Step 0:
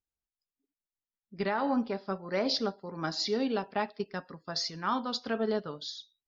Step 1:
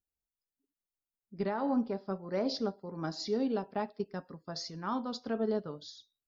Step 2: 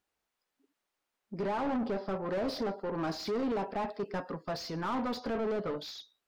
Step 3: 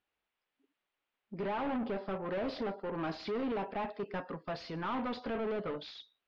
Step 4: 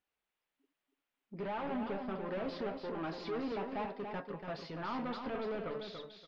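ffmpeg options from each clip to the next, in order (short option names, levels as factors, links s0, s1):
-af "equalizer=f=2700:t=o:w=2.7:g=-11"
-filter_complex "[0:a]alimiter=level_in=1.78:limit=0.0631:level=0:latency=1:release=11,volume=0.562,asplit=2[s0][s1];[s1]highpass=f=720:p=1,volume=14.1,asoftclip=type=tanh:threshold=0.0355[s2];[s0][s2]amix=inputs=2:normalize=0,lowpass=f=1400:p=1,volume=0.501,volume=1.41"
-af "lowpass=f=3000:t=q:w=1.6,volume=0.708"
-af "flanger=delay=3.8:depth=5:regen=-69:speed=0.5:shape=triangular,aecho=1:1:286|572|858:0.473|0.109|0.025,volume=1.12"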